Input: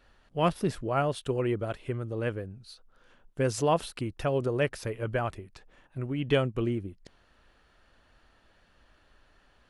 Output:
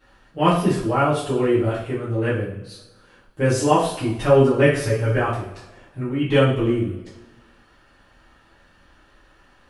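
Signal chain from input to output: peaking EQ 3.8 kHz -2.5 dB; 4.17–5.16 s: comb 7.3 ms, depth 85%; two-slope reverb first 0.52 s, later 1.5 s, from -16 dB, DRR -10 dB; trim -1 dB

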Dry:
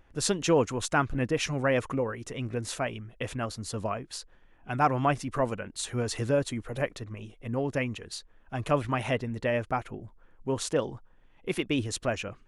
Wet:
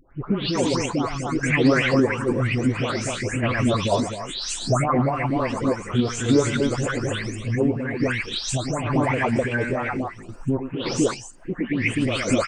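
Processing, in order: delay that grows with frequency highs late, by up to 372 ms; recorder AGC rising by 15 dB/s; loudspeakers at several distances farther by 37 m -10 dB, 86 m -4 dB; formant shift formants -3 st; peak limiter -18.5 dBFS, peak gain reduction 8.5 dB; random-step tremolo; sweeping bell 3 Hz 250–3000 Hz +12 dB; trim +5 dB

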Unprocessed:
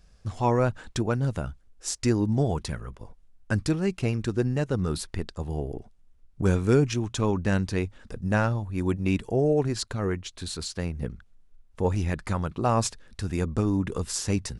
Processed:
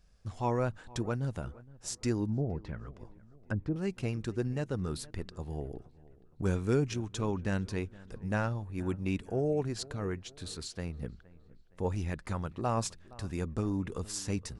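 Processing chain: 2.29–3.76 s: low-pass that closes with the level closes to 530 Hz, closed at -21.5 dBFS; feedback echo behind a low-pass 467 ms, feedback 44%, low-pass 2.3 kHz, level -21 dB; trim -7.5 dB

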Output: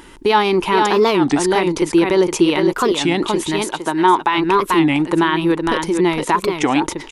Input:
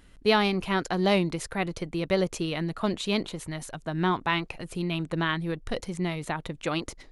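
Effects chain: band-stop 4.2 kHz, Q 14; on a send: delay 461 ms -7.5 dB; on the sum: peak limiter -20 dBFS, peak gain reduction 9 dB; 3.64–4.38 s: bass shelf 220 Hz -11 dB; in parallel at +2 dB: compression, threshold -40 dBFS, peak gain reduction 15 dB; on the sum: tilt shelf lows -5.5 dB, about 820 Hz; small resonant body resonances 350/900 Hz, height 16 dB, ringing for 25 ms; warped record 33 1/3 rpm, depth 250 cents; trim +5 dB

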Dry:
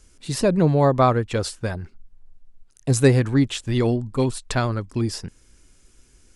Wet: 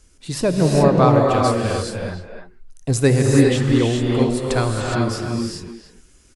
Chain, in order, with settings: speakerphone echo 300 ms, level -7 dB; gated-style reverb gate 440 ms rising, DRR -0.5 dB

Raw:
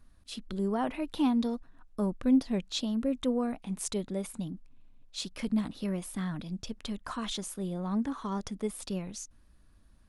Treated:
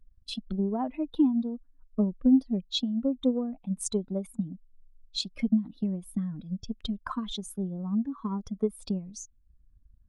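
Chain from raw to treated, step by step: spectral contrast enhancement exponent 1.8; transient shaper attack +8 dB, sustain -5 dB

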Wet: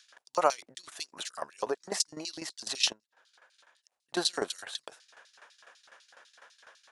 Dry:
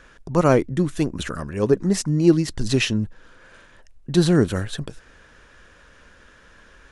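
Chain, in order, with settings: LFO high-pass square 4 Hz 740–4300 Hz; 2.92–4.14 s: compression 10:1, threshold -55 dBFS, peak gain reduction 20 dB; tremolo saw down 12 Hz, depth 85%

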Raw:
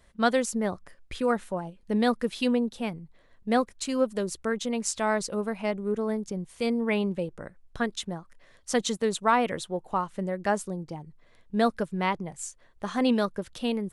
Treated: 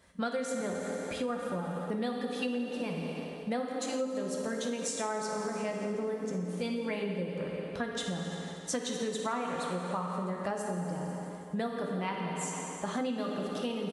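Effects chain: coarse spectral quantiser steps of 15 dB; frequency-shifting echo 166 ms, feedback 64%, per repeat +38 Hz, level -17 dB; reverberation RT60 2.4 s, pre-delay 3 ms, DRR 0.5 dB; compression 6:1, threshold -31 dBFS, peak gain reduction 14.5 dB; high-pass 83 Hz 12 dB/octave

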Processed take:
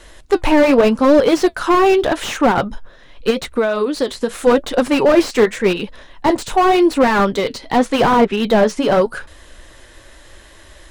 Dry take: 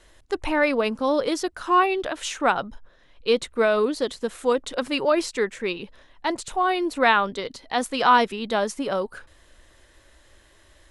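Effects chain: flange 0.85 Hz, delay 3.4 ms, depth 5.7 ms, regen -63%; 3.30–4.34 s: compression 6:1, threshold -31 dBFS, peak gain reduction 11 dB; 7.29–8.88 s: low-pass that closes with the level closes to 1.9 kHz, closed at -19.5 dBFS; loudness maximiser +16.5 dB; slew-rate limiter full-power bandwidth 250 Hz

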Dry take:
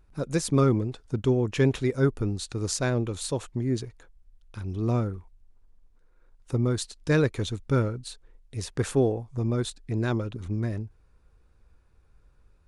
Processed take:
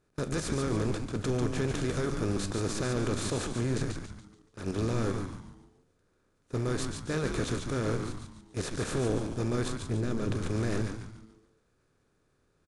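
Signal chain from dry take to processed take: spectral levelling over time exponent 0.4; gate -26 dBFS, range -28 dB; 9.65–10.34 s: bass shelf 420 Hz +10 dB; level held to a coarse grid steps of 12 dB; transient shaper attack -6 dB, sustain 0 dB; peak limiter -22 dBFS, peak gain reduction 7.5 dB; flange 0.71 Hz, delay 9 ms, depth 9.8 ms, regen -71%; frequency-shifting echo 143 ms, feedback 40%, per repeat -110 Hz, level -5 dB; trim +4 dB

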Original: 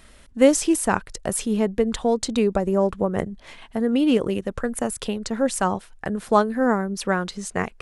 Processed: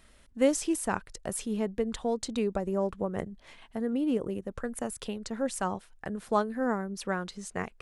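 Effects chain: 3.93–4.51 s: peaking EQ 3.3 kHz -8.5 dB 2.5 oct; trim -9 dB

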